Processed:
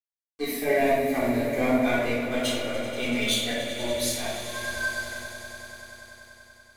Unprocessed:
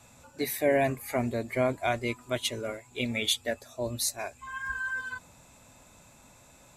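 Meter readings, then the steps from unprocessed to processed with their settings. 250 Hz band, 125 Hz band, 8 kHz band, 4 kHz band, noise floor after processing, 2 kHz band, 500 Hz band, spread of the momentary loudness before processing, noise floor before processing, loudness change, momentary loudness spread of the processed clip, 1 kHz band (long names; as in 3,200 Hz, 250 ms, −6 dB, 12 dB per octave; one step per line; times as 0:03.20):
+7.0 dB, 0.0 dB, +2.0 dB, +3.5 dB, below −85 dBFS, +4.0 dB, +4.0 dB, 11 LU, −57 dBFS, +4.0 dB, 17 LU, +3.5 dB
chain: dead-zone distortion −41.5 dBFS
flanger 0.79 Hz, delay 3.3 ms, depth 1.5 ms, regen +28%
on a send: echo that builds up and dies away 96 ms, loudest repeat 5, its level −15 dB
on the sum: rectangular room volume 680 cubic metres, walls mixed, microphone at 3.7 metres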